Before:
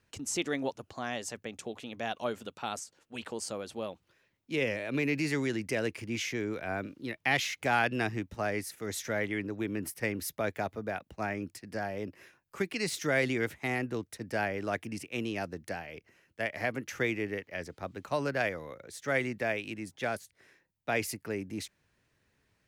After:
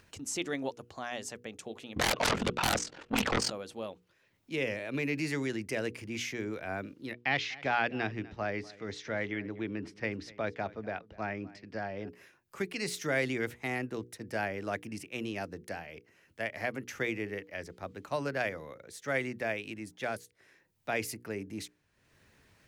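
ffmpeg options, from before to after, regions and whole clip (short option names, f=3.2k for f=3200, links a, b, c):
-filter_complex "[0:a]asettb=1/sr,asplit=3[a][b][c];[a]atrim=end=1.964[d];[b]atrim=start=1.96:end=3.5,asetpts=PTS-STARTPTS,afade=t=in:d=0.004:c=qsin,afade=t=out:st=1.536:d=0.004:c=qsin,lowpass=3.3k,aeval=exprs='0.106*sin(PI/2*10*val(0)/0.106)':c=same,aeval=exprs='val(0)*sin(2*PI*21*n/s)':c=same[e];[c]atrim=start=3.496[f];[d][e]acrossfade=d=0.004:c1=hsin:c2=qsin[g];[g][f]acrossfade=d=0.004:c1=qsin:c2=hsin,asettb=1/sr,asplit=3[h][i][j];[h]atrim=end=7.134[k];[i]atrim=start=7.13:end=12.09,asetpts=PTS-STARTPTS,afade=t=in:d=0.004:c=qsin,afade=t=out:st=4.956:d=0.004:c=qsin,lowpass=f=5k:w=0.5412,lowpass=f=5k:w=1.3066,aecho=1:1:246:0.0944,atrim=end_sample=218736[l];[j]atrim=start=12.086[m];[k][l]acrossfade=d=0.004:c1=hsin:c2=qsin[n];[n][m]acrossfade=d=0.004:c1=qsin:c2=hsin,bandreject=f=60:t=h:w=6,bandreject=f=120:t=h:w=6,bandreject=f=180:t=h:w=6,bandreject=f=240:t=h:w=6,bandreject=f=300:t=h:w=6,bandreject=f=360:t=h:w=6,bandreject=f=420:t=h:w=6,bandreject=f=480:t=h:w=6,acompressor=mode=upward:threshold=-50dB:ratio=2.5,volume=-2dB"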